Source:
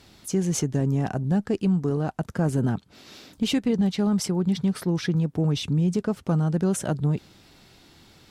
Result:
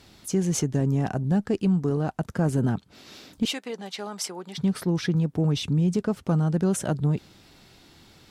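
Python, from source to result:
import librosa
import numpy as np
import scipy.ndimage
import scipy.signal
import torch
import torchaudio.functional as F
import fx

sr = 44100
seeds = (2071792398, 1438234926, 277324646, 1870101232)

y = fx.highpass(x, sr, hz=610.0, slope=12, at=(3.45, 4.58))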